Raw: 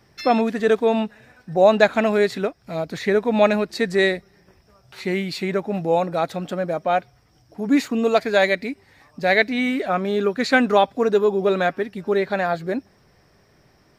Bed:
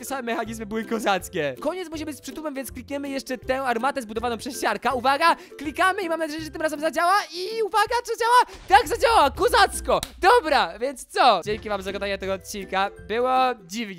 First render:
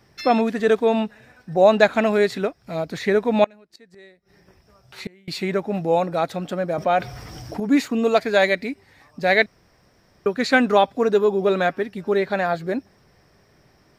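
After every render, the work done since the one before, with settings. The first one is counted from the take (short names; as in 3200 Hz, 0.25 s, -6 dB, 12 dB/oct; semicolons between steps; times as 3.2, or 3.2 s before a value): 3.44–5.28 flipped gate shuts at -19 dBFS, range -29 dB; 6.78–7.6 fast leveller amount 50%; 9.46–10.26 room tone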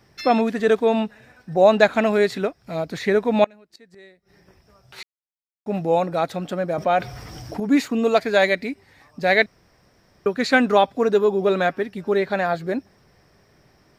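5.03–5.66 mute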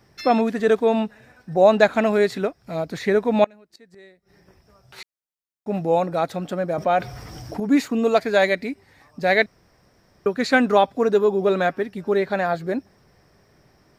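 bell 3000 Hz -2.5 dB 1.5 oct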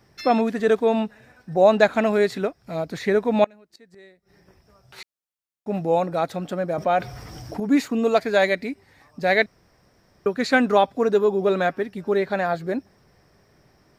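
gain -1 dB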